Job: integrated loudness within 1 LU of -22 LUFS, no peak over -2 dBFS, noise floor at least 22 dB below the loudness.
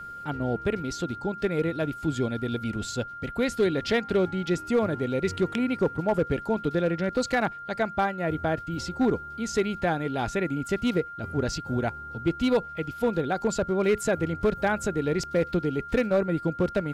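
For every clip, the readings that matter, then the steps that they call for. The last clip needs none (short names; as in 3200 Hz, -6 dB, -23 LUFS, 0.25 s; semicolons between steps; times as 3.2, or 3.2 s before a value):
clipped 0.5%; flat tops at -16.0 dBFS; steady tone 1400 Hz; tone level -37 dBFS; loudness -27.5 LUFS; peak -16.0 dBFS; loudness target -22.0 LUFS
-> clip repair -16 dBFS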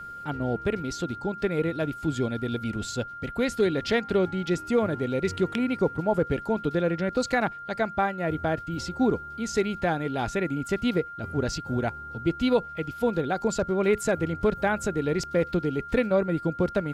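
clipped 0.0%; steady tone 1400 Hz; tone level -37 dBFS
-> notch 1400 Hz, Q 30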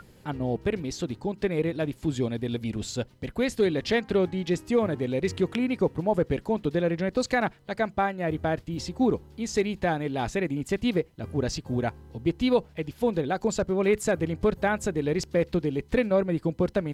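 steady tone none; loudness -27.5 LUFS; peak -11.5 dBFS; loudness target -22.0 LUFS
-> gain +5.5 dB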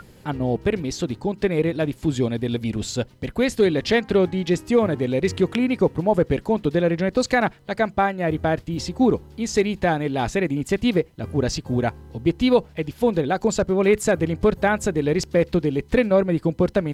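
loudness -22.0 LUFS; peak -6.0 dBFS; noise floor -49 dBFS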